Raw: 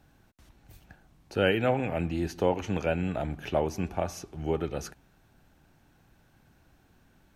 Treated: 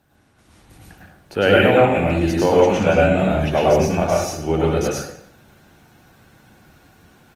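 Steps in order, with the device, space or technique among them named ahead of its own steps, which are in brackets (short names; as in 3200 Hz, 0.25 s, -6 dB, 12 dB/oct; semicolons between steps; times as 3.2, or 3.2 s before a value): de-hum 60.54 Hz, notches 13; 2.83–3.32 doubler 26 ms -5.5 dB; outdoor echo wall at 36 m, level -23 dB; far-field microphone of a smart speaker (reverb RT60 0.60 s, pre-delay 96 ms, DRR -4.5 dB; HPF 150 Hz 6 dB/oct; AGC gain up to 6 dB; gain +2.5 dB; Opus 24 kbps 48000 Hz)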